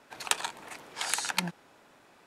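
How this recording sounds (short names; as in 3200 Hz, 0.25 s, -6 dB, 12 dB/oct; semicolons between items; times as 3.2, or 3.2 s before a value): noise floor -60 dBFS; spectral tilt -2.5 dB/oct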